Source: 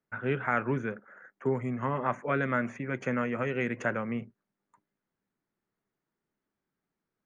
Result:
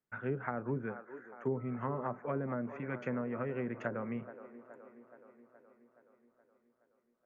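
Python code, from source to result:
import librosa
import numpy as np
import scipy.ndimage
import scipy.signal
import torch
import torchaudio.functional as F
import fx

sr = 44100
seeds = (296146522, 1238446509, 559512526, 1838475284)

y = fx.echo_wet_bandpass(x, sr, ms=422, feedback_pct=62, hz=580.0, wet_db=-12.5)
y = fx.env_lowpass_down(y, sr, base_hz=710.0, full_db=-24.5)
y = fx.dmg_tone(y, sr, hz=1300.0, level_db=-49.0, at=(1.56, 2.15), fade=0.02)
y = y * 10.0 ** (-5.5 / 20.0)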